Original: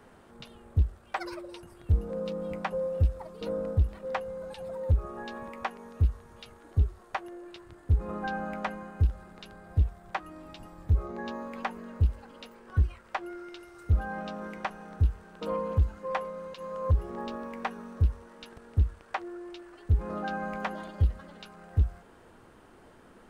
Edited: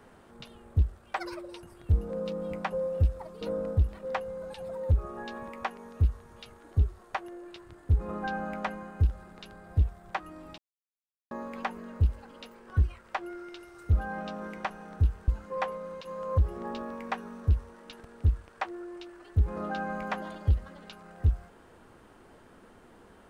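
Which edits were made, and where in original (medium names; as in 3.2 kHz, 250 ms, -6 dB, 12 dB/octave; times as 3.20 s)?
10.58–11.31 s: mute
15.28–15.81 s: delete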